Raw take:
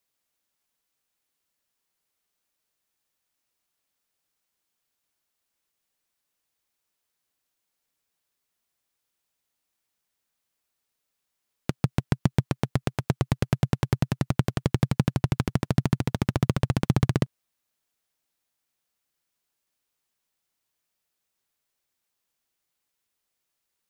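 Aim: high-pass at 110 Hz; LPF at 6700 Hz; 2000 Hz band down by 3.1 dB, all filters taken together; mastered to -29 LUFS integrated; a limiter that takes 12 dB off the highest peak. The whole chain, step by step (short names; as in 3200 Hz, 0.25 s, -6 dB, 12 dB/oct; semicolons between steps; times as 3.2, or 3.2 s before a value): HPF 110 Hz; LPF 6700 Hz; bell 2000 Hz -4 dB; gain +8 dB; limiter -13 dBFS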